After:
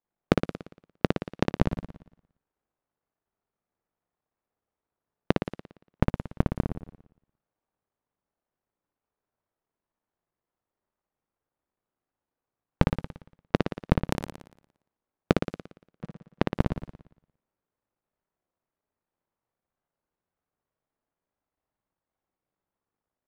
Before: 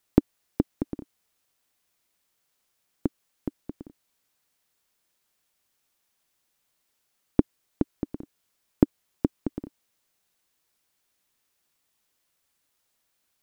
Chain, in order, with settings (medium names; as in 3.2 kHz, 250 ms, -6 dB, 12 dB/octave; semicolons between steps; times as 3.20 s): cycle switcher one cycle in 3, muted; speed mistake 78 rpm record played at 45 rpm; waveshaping leveller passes 5; in parallel at -10 dB: saturation -14.5 dBFS, distortion -10 dB; on the sum: inverted gate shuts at -15 dBFS, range -26 dB; level-controlled noise filter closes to 1 kHz, open at -33.5 dBFS; on a send: flutter echo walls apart 9.9 m, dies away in 0.76 s; on the sum: trim +2.5 dB